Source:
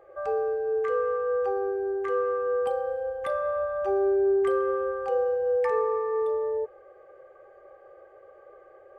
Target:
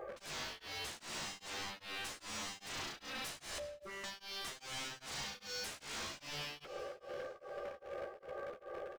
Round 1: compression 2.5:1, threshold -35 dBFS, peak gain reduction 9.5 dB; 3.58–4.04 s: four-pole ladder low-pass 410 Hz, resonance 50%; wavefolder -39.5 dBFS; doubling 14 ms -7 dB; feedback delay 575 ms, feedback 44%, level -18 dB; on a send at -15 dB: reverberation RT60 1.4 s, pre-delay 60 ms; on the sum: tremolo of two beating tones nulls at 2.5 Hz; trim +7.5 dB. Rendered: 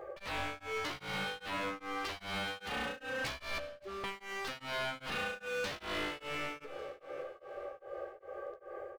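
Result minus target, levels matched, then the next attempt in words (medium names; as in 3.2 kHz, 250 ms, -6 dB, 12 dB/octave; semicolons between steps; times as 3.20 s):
wavefolder: distortion -15 dB
compression 2.5:1, threshold -35 dBFS, peak gain reduction 9.5 dB; 3.58–4.04 s: four-pole ladder low-pass 410 Hz, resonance 50%; wavefolder -46 dBFS; doubling 14 ms -7 dB; feedback delay 575 ms, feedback 44%, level -18 dB; on a send at -15 dB: reverberation RT60 1.4 s, pre-delay 60 ms; on the sum: tremolo of two beating tones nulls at 2.5 Hz; trim +7.5 dB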